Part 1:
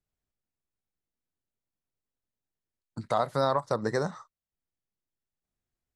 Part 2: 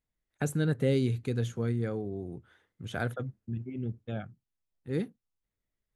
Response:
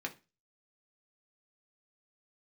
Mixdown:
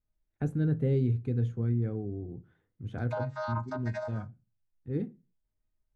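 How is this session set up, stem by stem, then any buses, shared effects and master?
−3.0 dB, 0.00 s, send −11 dB, channel vocoder with a chord as carrier bare fifth, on G#3; Butterworth high-pass 590 Hz 96 dB per octave; downward compressor, threshold −30 dBFS, peak gain reduction 6 dB
−12.0 dB, 0.00 s, send −4 dB, spectral tilt −4 dB per octave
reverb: on, RT60 0.30 s, pre-delay 3 ms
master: no processing

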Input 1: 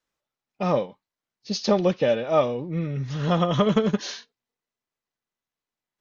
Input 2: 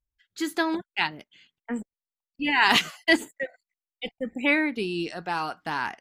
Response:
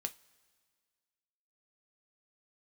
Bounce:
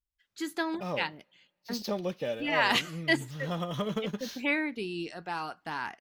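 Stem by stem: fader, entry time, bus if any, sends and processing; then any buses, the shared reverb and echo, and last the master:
−4.5 dB, 0.20 s, send −18.5 dB, running median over 5 samples; high-shelf EQ 4,100 Hz +9.5 dB; automatic ducking −10 dB, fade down 0.75 s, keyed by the second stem
−7.5 dB, 0.00 s, send −15 dB, no processing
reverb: on, pre-delay 3 ms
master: no processing

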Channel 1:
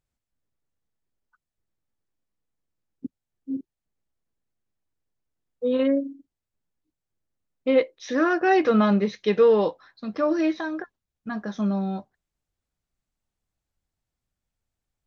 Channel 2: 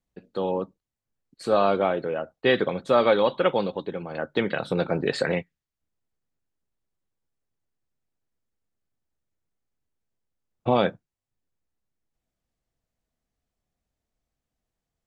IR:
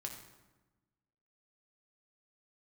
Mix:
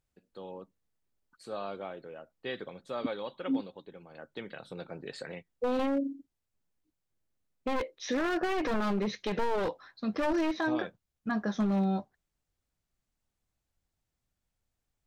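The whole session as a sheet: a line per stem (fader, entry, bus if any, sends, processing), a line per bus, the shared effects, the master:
0.0 dB, 0.00 s, no send, wavefolder on the positive side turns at −22.5 dBFS
−17.5 dB, 0.00 s, no send, high-shelf EQ 3,600 Hz +7 dB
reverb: not used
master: brickwall limiter −21.5 dBFS, peak gain reduction 12 dB

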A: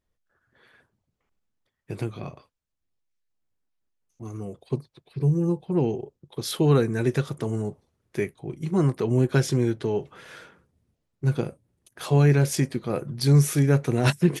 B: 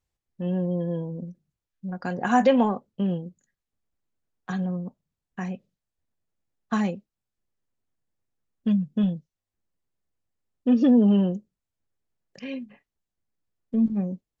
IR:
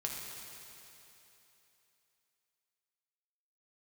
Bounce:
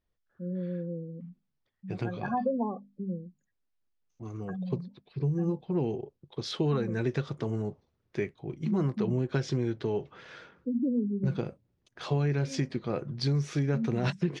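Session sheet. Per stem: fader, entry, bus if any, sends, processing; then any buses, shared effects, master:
−3.5 dB, 0.00 s, no send, no processing
−7.5 dB, 0.00 s, no send, gate on every frequency bin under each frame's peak −15 dB strong; mains-hum notches 50/100/150/200/250 Hz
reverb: not used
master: low-pass filter 5,600 Hz 24 dB per octave; downward compressor, threshold −24 dBFS, peak gain reduction 8 dB

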